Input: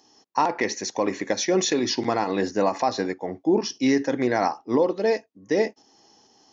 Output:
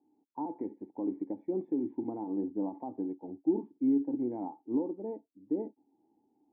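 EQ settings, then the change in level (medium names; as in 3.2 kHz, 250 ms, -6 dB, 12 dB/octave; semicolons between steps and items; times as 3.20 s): cascade formant filter u; distance through air 420 m; -2.0 dB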